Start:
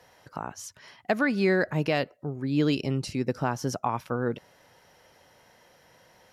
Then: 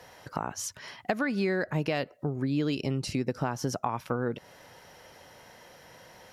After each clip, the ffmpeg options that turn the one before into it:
-af "acompressor=threshold=-33dB:ratio=4,volume=6dB"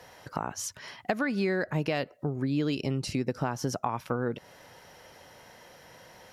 -af anull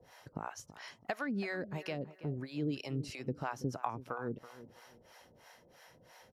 -filter_complex "[0:a]asplit=2[a][b];[b]adelay=329,lowpass=f=2.2k:p=1,volume=-14.5dB,asplit=2[c][d];[d]adelay=329,lowpass=f=2.2k:p=1,volume=0.32,asplit=2[e][f];[f]adelay=329,lowpass=f=2.2k:p=1,volume=0.32[g];[a][c][e][g]amix=inputs=4:normalize=0,acrossover=split=530[h][i];[h]aeval=exprs='val(0)*(1-1/2+1/2*cos(2*PI*3*n/s))':c=same[j];[i]aeval=exprs='val(0)*(1-1/2-1/2*cos(2*PI*3*n/s))':c=same[k];[j][k]amix=inputs=2:normalize=0,volume=-3.5dB"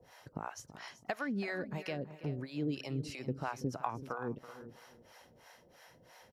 -af "aecho=1:1:381:0.188"

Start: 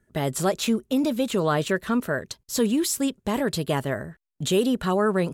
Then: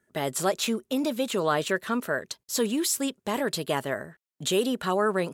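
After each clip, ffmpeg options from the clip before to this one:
-af "highpass=f=390:p=1"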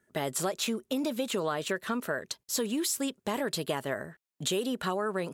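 -af "acompressor=threshold=-27dB:ratio=6"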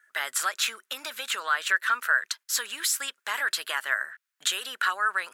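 -af "highpass=f=1.5k:t=q:w=3.2,volume=4.5dB"

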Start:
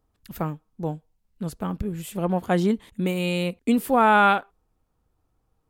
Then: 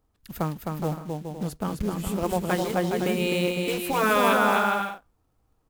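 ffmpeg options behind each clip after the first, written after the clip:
-af "acrusher=bits=5:mode=log:mix=0:aa=0.000001,aecho=1:1:260|416|509.6|565.8|599.5:0.631|0.398|0.251|0.158|0.1,afftfilt=real='re*lt(hypot(re,im),0.708)':imag='im*lt(hypot(re,im),0.708)':win_size=1024:overlap=0.75"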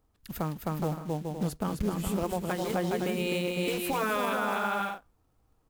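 -af "alimiter=limit=-19.5dB:level=0:latency=1:release=262"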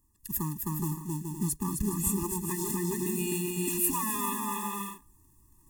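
-af "highshelf=f=5.6k:t=q:w=1.5:g=13.5,areverse,acompressor=mode=upward:threshold=-50dB:ratio=2.5,areverse,afftfilt=real='re*eq(mod(floor(b*sr/1024/410),2),0)':imag='im*eq(mod(floor(b*sr/1024/410),2),0)':win_size=1024:overlap=0.75"

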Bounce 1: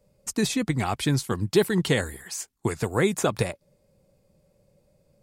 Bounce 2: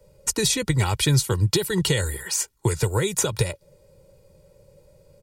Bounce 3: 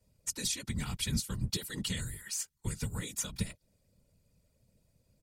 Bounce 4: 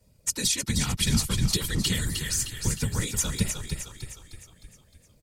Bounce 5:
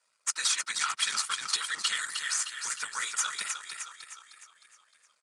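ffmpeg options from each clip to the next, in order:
-filter_complex "[0:a]aecho=1:1:2.1:0.67,alimiter=limit=-13dB:level=0:latency=1:release=187,acrossover=split=160|3000[a][b][c];[b]acompressor=threshold=-34dB:ratio=3[d];[a][d][c]amix=inputs=3:normalize=0,volume=7.5dB"
-af "equalizer=f=540:w=0.69:g=-14.5,afftfilt=real='hypot(re,im)*cos(2*PI*random(0))':imag='hypot(re,im)*sin(2*PI*random(1))':win_size=512:overlap=0.75,volume=-5dB"
-filter_complex "[0:a]asplit=7[a][b][c][d][e][f][g];[b]adelay=308,afreqshift=-37,volume=-6dB[h];[c]adelay=616,afreqshift=-74,volume=-12dB[i];[d]adelay=924,afreqshift=-111,volume=-18dB[j];[e]adelay=1232,afreqshift=-148,volume=-24.1dB[k];[f]adelay=1540,afreqshift=-185,volume=-30.1dB[l];[g]adelay=1848,afreqshift=-222,volume=-36.1dB[m];[a][h][i][j][k][l][m]amix=inputs=7:normalize=0,volume=8.5dB"
-af "aeval=exprs='if(lt(val(0),0),0.447*val(0),val(0))':c=same,highpass=f=1.3k:t=q:w=3.9,aresample=22050,aresample=44100"

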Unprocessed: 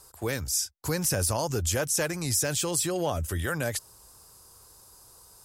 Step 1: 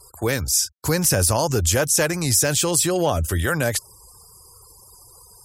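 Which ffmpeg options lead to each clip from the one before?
-af "afftfilt=real='re*gte(hypot(re,im),0.00224)':imag='im*gte(hypot(re,im),0.00224)':win_size=1024:overlap=0.75,volume=8dB"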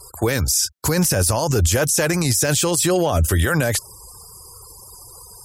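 -af "alimiter=limit=-16dB:level=0:latency=1:release=20,volume=6.5dB"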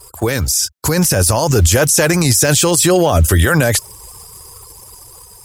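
-filter_complex "[0:a]asplit=2[a][b];[b]acrusher=bits=5:mix=0:aa=0.000001,volume=-8.5dB[c];[a][c]amix=inputs=2:normalize=0,dynaudnorm=f=320:g=7:m=4.5dB"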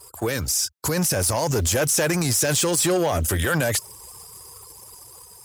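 -af "asoftclip=type=tanh:threshold=-9dB,highpass=f=120:p=1,volume=-5.5dB"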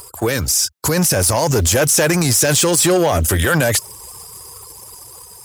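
-af "acompressor=mode=upward:threshold=-42dB:ratio=2.5,volume=6.5dB"

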